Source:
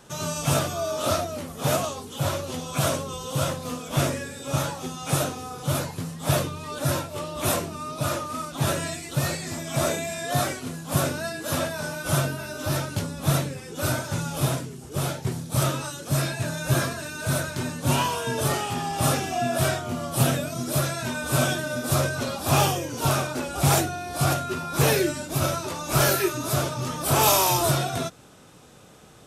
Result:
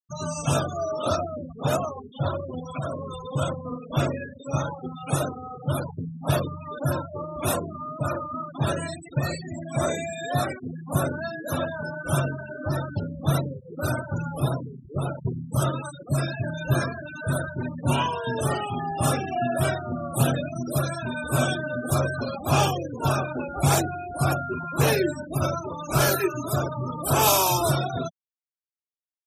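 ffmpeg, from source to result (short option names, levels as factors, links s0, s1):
-filter_complex "[0:a]asettb=1/sr,asplit=3[s0][s1][s2];[s0]atrim=end=2.714[s3];[s1]atrim=start=2.71:end=3.2,asetpts=PTS-STARTPTS,afade=t=in:d=0.004:c=qsin,afade=t=out:st=0.486:d=0.004:c=qsin,acompressor=threshold=0.0398:ratio=2:attack=3.2:release=140:knee=1:detection=peak[s4];[s2]atrim=start=3.196[s5];[s3][s4]acrossfade=d=0.004:c1=hsin:c2=qsin[s6];[s6][s5]acrossfade=d=0.004:c1=qsin:c2=hsin,afftfilt=real='re*gte(hypot(re,im),0.0501)':imag='im*gte(hypot(re,im),0.0501)':win_size=1024:overlap=0.75"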